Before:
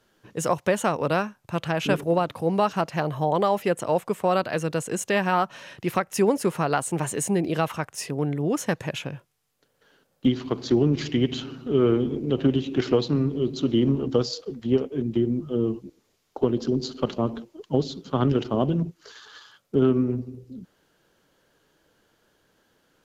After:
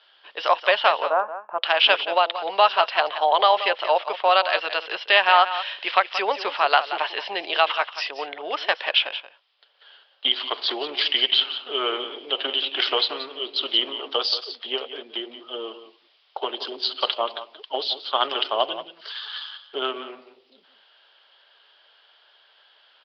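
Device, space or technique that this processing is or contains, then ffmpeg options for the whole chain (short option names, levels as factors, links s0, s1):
musical greeting card: -filter_complex "[0:a]asplit=3[s0][s1][s2];[s0]afade=t=out:st=1.02:d=0.02[s3];[s1]lowpass=f=1200:w=0.5412,lowpass=f=1200:w=1.3066,afade=t=in:st=1.02:d=0.02,afade=t=out:st=1.62:d=0.02[s4];[s2]afade=t=in:st=1.62:d=0.02[s5];[s3][s4][s5]amix=inputs=3:normalize=0,bandreject=f=500:w=12,aresample=11025,aresample=44100,highpass=f=620:w=0.5412,highpass=f=620:w=1.3066,equalizer=f=3200:t=o:w=0.58:g=11.5,aecho=1:1:178:0.237,volume=2.24"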